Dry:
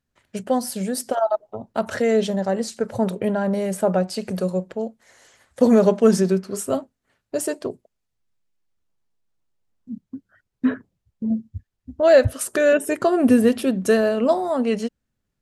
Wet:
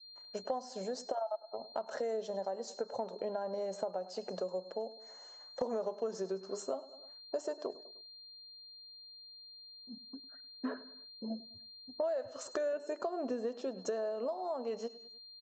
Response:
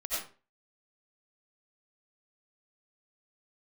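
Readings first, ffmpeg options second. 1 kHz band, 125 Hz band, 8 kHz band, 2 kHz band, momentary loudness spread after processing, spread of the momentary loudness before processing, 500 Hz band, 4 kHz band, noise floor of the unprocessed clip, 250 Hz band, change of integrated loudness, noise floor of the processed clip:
-14.0 dB, under -25 dB, -19.0 dB, -22.5 dB, 14 LU, 17 LU, -16.5 dB, -9.0 dB, -79 dBFS, -23.5 dB, -18.5 dB, -54 dBFS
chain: -af "highpass=640,alimiter=limit=-14dB:level=0:latency=1:release=144,firequalizer=gain_entry='entry(910,0);entry(1400,-8);entry(2300,-17);entry(5700,-10)':delay=0.05:min_phase=1,aecho=1:1:102|204|306:0.1|0.043|0.0185,aresample=16000,aresample=44100,aeval=exprs='val(0)+0.00251*sin(2*PI*4200*n/s)':c=same,acompressor=threshold=-34dB:ratio=6,adynamicequalizer=threshold=0.002:dfrequency=1400:dqfactor=0.73:tfrequency=1400:tqfactor=0.73:attack=5:release=100:ratio=0.375:range=2:mode=cutabove:tftype=bell,volume=1dB"

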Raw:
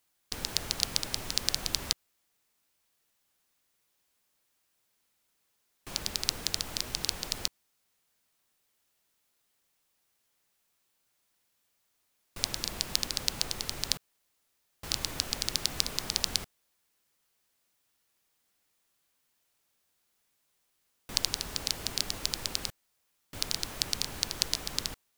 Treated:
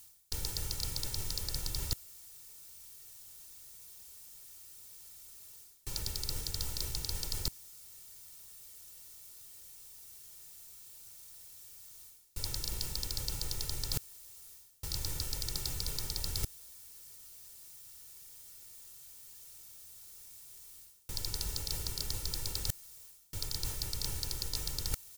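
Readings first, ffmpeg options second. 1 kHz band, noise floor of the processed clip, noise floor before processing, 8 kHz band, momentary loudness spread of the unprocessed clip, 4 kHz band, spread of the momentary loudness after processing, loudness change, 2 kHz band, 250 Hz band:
-8.0 dB, -57 dBFS, -76 dBFS, -4.5 dB, 6 LU, -7.5 dB, 14 LU, -8.0 dB, -10.0 dB, -5.5 dB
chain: -af "bass=f=250:g=13,treble=f=4k:g=14,asoftclip=type=hard:threshold=-9.5dB,aecho=1:1:2.2:0.64,areverse,acompressor=threshold=-41dB:ratio=16,areverse,volume=9dB"

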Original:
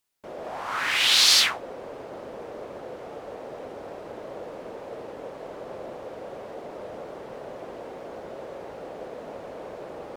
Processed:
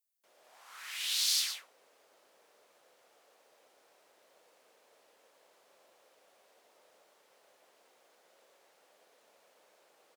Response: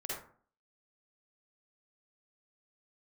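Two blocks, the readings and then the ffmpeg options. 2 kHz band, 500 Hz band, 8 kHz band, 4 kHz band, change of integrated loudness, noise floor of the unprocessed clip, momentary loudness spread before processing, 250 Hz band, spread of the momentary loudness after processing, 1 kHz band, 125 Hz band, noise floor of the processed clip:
-18.5 dB, -30.5 dB, -9.0 dB, -13.0 dB, -11.5 dB, -41 dBFS, 21 LU, -35.5 dB, 17 LU, -24.5 dB, under -40 dB, -68 dBFS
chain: -filter_complex "[0:a]aderivative,asplit=2[a][b];[b]adelay=116.6,volume=-6dB,highshelf=f=4k:g=-2.62[c];[a][c]amix=inputs=2:normalize=0,volume=-9dB"

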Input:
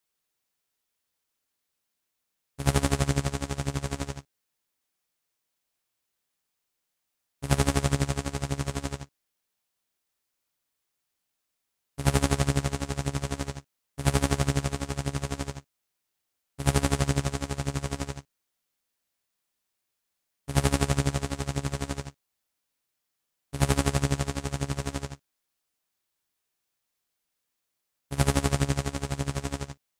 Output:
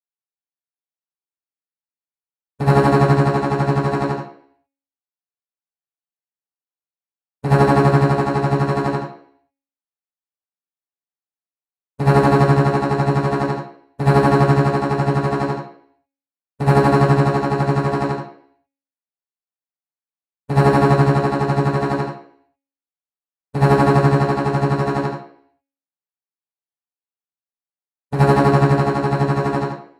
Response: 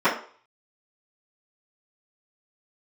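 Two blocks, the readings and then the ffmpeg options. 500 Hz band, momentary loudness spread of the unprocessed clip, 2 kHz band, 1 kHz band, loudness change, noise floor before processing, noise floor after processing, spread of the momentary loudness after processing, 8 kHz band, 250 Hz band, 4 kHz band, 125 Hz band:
+16.0 dB, 12 LU, +10.5 dB, +16.5 dB, +12.0 dB, -82 dBFS, under -85 dBFS, 10 LU, n/a, +12.5 dB, +0.5 dB, +11.0 dB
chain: -filter_complex "[0:a]agate=range=-33dB:threshold=-36dB:ratio=3:detection=peak,bandreject=f=275.8:t=h:w=4,bandreject=f=551.6:t=h:w=4,bandreject=f=827.4:t=h:w=4,bandreject=f=1.1032k:t=h:w=4,bandreject=f=1.379k:t=h:w=4,bandreject=f=1.6548k:t=h:w=4,bandreject=f=1.9306k:t=h:w=4,bandreject=f=2.2064k:t=h:w=4,bandreject=f=2.4822k:t=h:w=4,bandreject=f=2.758k:t=h:w=4,bandreject=f=3.0338k:t=h:w=4,bandreject=f=3.3096k:t=h:w=4,bandreject=f=3.5854k:t=h:w=4,bandreject=f=3.8612k:t=h:w=4,bandreject=f=4.137k:t=h:w=4,bandreject=f=4.4128k:t=h:w=4,bandreject=f=4.6886k:t=h:w=4,bandreject=f=4.9644k:t=h:w=4,bandreject=f=5.2402k:t=h:w=4,bandreject=f=5.516k:t=h:w=4,bandreject=f=5.7918k:t=h:w=4,bandreject=f=6.0676k:t=h:w=4,bandreject=f=6.3434k:t=h:w=4,bandreject=f=6.6192k:t=h:w=4,bandreject=f=6.895k:t=h:w=4,bandreject=f=7.1708k:t=h:w=4,bandreject=f=7.4466k:t=h:w=4,bandreject=f=7.7224k:t=h:w=4,bandreject=f=7.9982k:t=h:w=4,bandreject=f=8.274k:t=h:w=4,asoftclip=type=hard:threshold=-19dB[a];[1:a]atrim=start_sample=2205,afade=t=out:st=0.41:d=0.01,atrim=end_sample=18522,asetrate=33957,aresample=44100[b];[a][b]afir=irnorm=-1:irlink=0,volume=-6.5dB"

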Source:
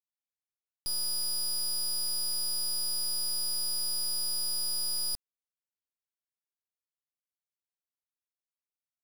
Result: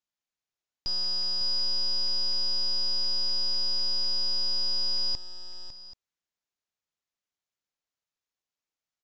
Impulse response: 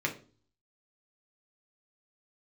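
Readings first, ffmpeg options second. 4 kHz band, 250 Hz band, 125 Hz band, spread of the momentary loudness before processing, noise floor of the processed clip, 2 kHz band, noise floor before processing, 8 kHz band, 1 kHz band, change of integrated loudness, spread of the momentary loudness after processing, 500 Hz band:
+5.5 dB, +5.0 dB, n/a, 2 LU, under -85 dBFS, +5.0 dB, under -85 dBFS, -15.5 dB, +4.5 dB, +3.0 dB, 14 LU, +6.5 dB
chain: -af "aecho=1:1:552|783:0.316|0.141,aresample=16000,aresample=44100,volume=5dB"

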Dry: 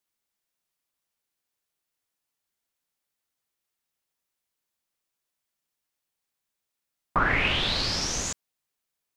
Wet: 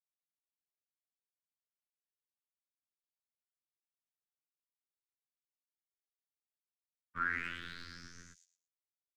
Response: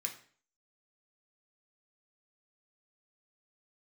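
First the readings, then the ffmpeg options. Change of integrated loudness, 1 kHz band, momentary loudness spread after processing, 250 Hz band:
-14.5 dB, -14.0 dB, 18 LU, -18.5 dB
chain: -filter_complex "[0:a]equalizer=f=1.3k:w=4.5:g=-4.5,asoftclip=type=hard:threshold=-19.5dB,agate=range=-33dB:threshold=-18dB:ratio=3:detection=peak,afreqshift=-36,afftfilt=real='hypot(re,im)*cos(PI*b)':imag='0':win_size=2048:overlap=0.75,firequalizer=gain_entry='entry(220,0);entry(750,-29);entry(1400,6);entry(2700,-13)':delay=0.05:min_phase=1,acrossover=split=270|3400[a][b][c];[a]acompressor=threshold=-52dB:ratio=6[d];[c]aecho=1:1:113|226|339:0.668|0.154|0.0354[e];[d][b][e]amix=inputs=3:normalize=0,volume=1.5dB"

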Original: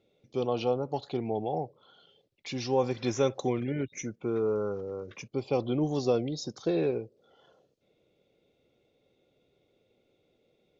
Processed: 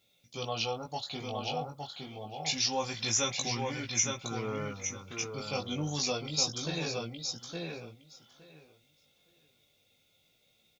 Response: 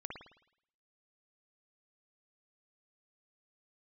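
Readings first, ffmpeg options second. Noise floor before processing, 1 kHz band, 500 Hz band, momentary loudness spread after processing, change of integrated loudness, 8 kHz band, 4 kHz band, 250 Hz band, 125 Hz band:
-72 dBFS, -1.0 dB, -9.0 dB, 12 LU, -2.0 dB, n/a, +11.0 dB, -7.0 dB, -2.5 dB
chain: -filter_complex "[0:a]equalizer=f=390:t=o:w=1:g=-12.5,crystalizer=i=7:c=0,asplit=2[a][b];[b]adelay=865,lowpass=f=4.6k:p=1,volume=-3.5dB,asplit=2[c][d];[d]adelay=865,lowpass=f=4.6k:p=1,volume=0.16,asplit=2[e][f];[f]adelay=865,lowpass=f=4.6k:p=1,volume=0.16[g];[a][c][e][g]amix=inputs=4:normalize=0,flanger=delay=17.5:depth=2.9:speed=0.27"

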